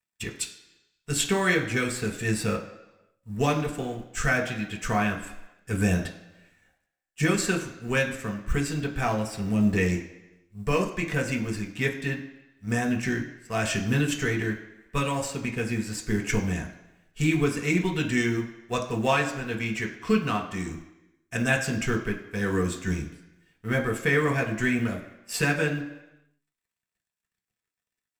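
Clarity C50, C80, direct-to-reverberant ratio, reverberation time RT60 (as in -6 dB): 9.5 dB, 12.0 dB, 0.0 dB, 1.0 s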